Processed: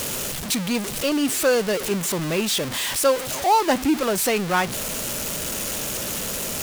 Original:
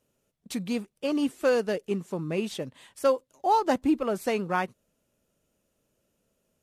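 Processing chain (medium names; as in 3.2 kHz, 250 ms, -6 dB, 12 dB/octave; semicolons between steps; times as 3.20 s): jump at every zero crossing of -28 dBFS; tilt shelf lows -4 dB, about 1.5 kHz; trim +5.5 dB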